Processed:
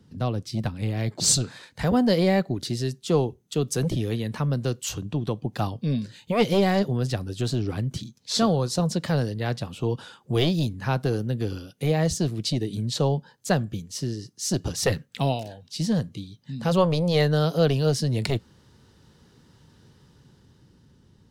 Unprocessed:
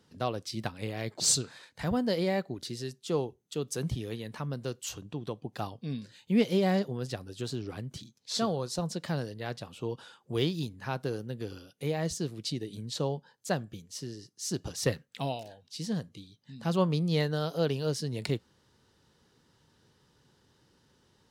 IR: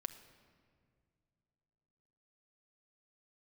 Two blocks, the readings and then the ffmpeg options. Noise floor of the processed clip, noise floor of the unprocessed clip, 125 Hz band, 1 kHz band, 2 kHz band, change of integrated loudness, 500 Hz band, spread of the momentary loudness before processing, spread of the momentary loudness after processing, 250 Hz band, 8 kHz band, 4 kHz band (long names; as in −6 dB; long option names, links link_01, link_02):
−59 dBFS, −68 dBFS, +9.5 dB, +7.5 dB, +6.5 dB, +7.5 dB, +7.0 dB, 12 LU, 9 LU, +7.5 dB, +5.5 dB, +6.5 dB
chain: -filter_complex "[0:a]acrossover=split=270[link_01][link_02];[link_01]aeval=exprs='0.0841*sin(PI/2*3.16*val(0)/0.0841)':channel_layout=same[link_03];[link_02]dynaudnorm=framelen=220:gausssize=11:maxgain=7dB[link_04];[link_03][link_04]amix=inputs=2:normalize=0"